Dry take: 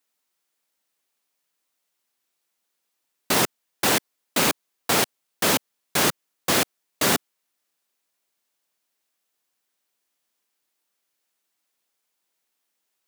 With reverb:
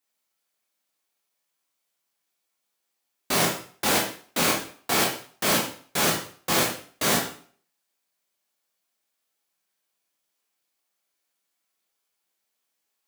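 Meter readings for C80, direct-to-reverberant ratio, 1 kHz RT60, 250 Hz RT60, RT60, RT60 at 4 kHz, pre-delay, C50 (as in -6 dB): 10.0 dB, -2.5 dB, 0.50 s, 0.45 s, 0.45 s, 0.45 s, 6 ms, 5.5 dB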